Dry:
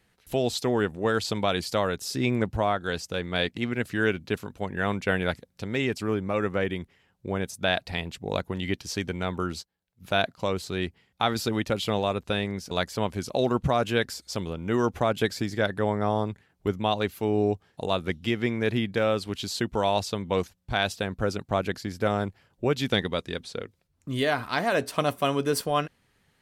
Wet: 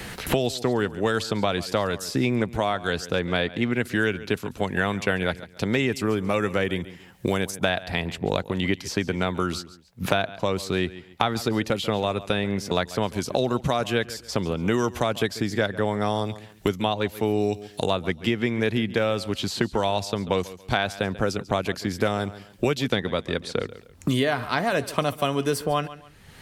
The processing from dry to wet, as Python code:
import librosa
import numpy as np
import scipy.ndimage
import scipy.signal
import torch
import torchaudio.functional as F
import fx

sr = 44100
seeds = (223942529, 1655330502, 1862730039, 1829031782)

y = fx.high_shelf(x, sr, hz=4800.0, db=7.0, at=(5.78, 8.13))
y = fx.echo_feedback(y, sr, ms=139, feedback_pct=18, wet_db=-19)
y = fx.band_squash(y, sr, depth_pct=100)
y = y * 10.0 ** (1.0 / 20.0)